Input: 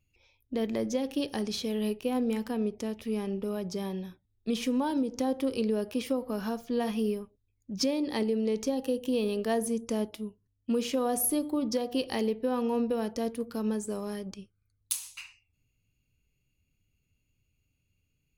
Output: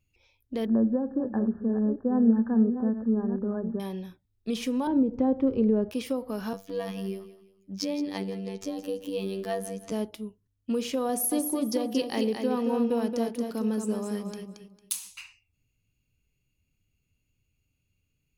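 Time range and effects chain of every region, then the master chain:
0:00.65–0:03.80: delay that plays each chunk backwards 456 ms, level −9 dB + linear-phase brick-wall low-pass 1,800 Hz + parametric band 230 Hz +12.5 dB 0.21 octaves
0:04.87–0:05.91: low-pass filter 1,400 Hz + low-shelf EQ 330 Hz +10 dB
0:06.53–0:09.92: dynamic equaliser 8,500 Hz, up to −3 dB, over −52 dBFS, Q 1.1 + phases set to zero 97 Hz + repeating echo 168 ms, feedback 35%, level −14 dB
0:11.09–0:15.10: low shelf with overshoot 130 Hz −8.5 dB, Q 1.5 + repeating echo 226 ms, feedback 24%, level −5.5 dB
whole clip: no processing

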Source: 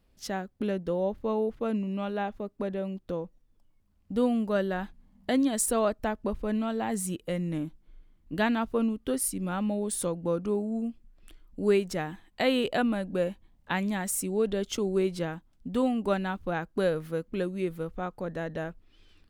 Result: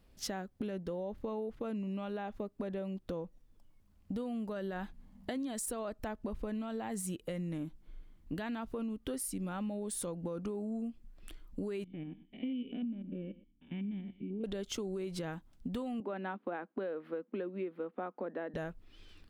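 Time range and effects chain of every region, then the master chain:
0:11.84–0:14.44: spectrum averaged block by block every 100 ms + formant resonators in series i + single-tap delay 121 ms −19.5 dB
0:16.00–0:18.54: Butterworth high-pass 210 Hz 48 dB per octave + high-frequency loss of the air 450 metres
whole clip: brickwall limiter −24 dBFS; downward compressor 6 to 1, threshold −38 dBFS; level +2.5 dB

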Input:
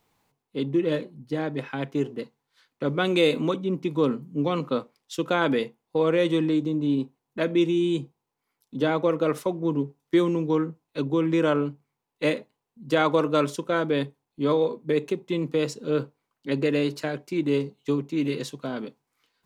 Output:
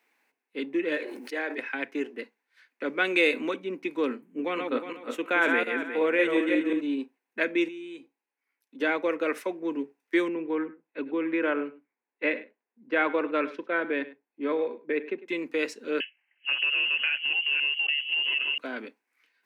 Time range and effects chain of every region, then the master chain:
0:00.97–0:01.58: high-pass filter 350 Hz 24 dB per octave + level that may fall only so fast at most 24 dB per second
0:04.21–0:06.81: feedback delay that plays each chunk backwards 180 ms, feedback 46%, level −3.5 dB + parametric band 5,000 Hz −13 dB 0.48 octaves
0:07.68–0:08.80: downward compressor 2 to 1, threshold −32 dBFS + tuned comb filter 280 Hz, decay 0.17 s, mix 50%
0:10.28–0:15.28: high-frequency loss of the air 320 metres + single-tap delay 102 ms −16.5 dB + one half of a high-frequency compander decoder only
0:16.00–0:18.58: delay that plays each chunk backwards 267 ms, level −3 dB + downward compressor 10 to 1, threshold −25 dBFS + voice inversion scrambler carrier 3,100 Hz
whole clip: Butterworth high-pass 240 Hz 36 dB per octave; flat-topped bell 2,000 Hz +11.5 dB 1 octave; notch filter 7,100 Hz, Q 22; level −4.5 dB

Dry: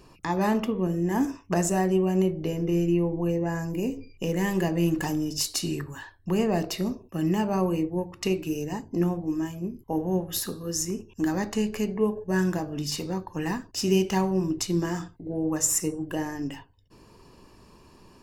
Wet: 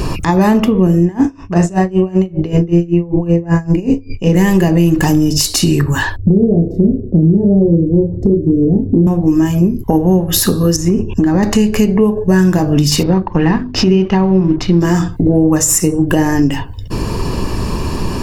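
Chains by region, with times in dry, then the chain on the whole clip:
0:01.05–0:04.35: high-frequency loss of the air 79 metres + double-tracking delay 41 ms −10 dB + tremolo with a sine in dB 5.2 Hz, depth 24 dB
0:06.16–0:09.07: inverse Chebyshev low-pass filter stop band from 1,000 Hz + double-tracking delay 30 ms −2.5 dB
0:10.76–0:11.43: downward compressor 4 to 1, threshold −30 dBFS + low-pass filter 1,700 Hz 6 dB per octave
0:13.03–0:14.81: mu-law and A-law mismatch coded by A + high-frequency loss of the air 270 metres + mains-hum notches 50/100/150/200/250/300/350/400 Hz
whole clip: low-shelf EQ 180 Hz +9.5 dB; downward compressor 6 to 1, threshold −40 dBFS; boost into a limiter +31.5 dB; level −1 dB

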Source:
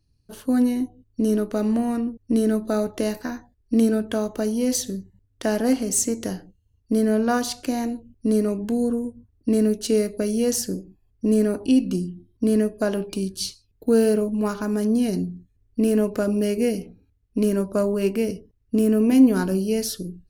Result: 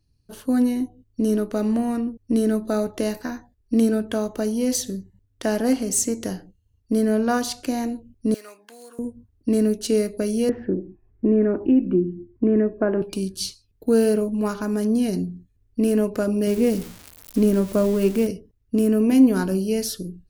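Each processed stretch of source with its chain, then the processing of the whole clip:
0:08.34–0:08.99: running median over 5 samples + high-pass filter 1,400 Hz
0:10.49–0:13.02: Butterworth low-pass 2,200 Hz + parametric band 350 Hz +12 dB 0.24 octaves + multiband upward and downward compressor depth 40%
0:16.47–0:18.27: spike at every zero crossing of −22 dBFS + spectral tilt −1.5 dB per octave
whole clip: no processing

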